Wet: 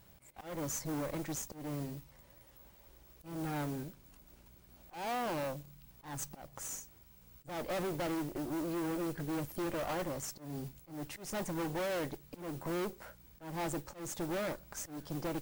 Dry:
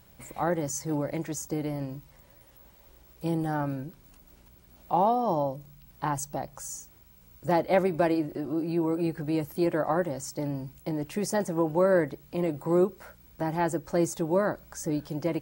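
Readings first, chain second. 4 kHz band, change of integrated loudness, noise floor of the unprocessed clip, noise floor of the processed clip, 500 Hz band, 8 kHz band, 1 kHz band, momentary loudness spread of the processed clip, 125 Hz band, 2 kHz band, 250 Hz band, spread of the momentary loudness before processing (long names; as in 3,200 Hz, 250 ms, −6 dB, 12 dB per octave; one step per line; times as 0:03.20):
−1.5 dB, −10.5 dB, −57 dBFS, −61 dBFS, −12.0 dB, −4.5 dB, −11.5 dB, 21 LU, −9.5 dB, −7.0 dB, −10.5 dB, 11 LU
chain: tube saturation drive 35 dB, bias 0.8
volume swells 214 ms
noise that follows the level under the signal 17 dB
level +1 dB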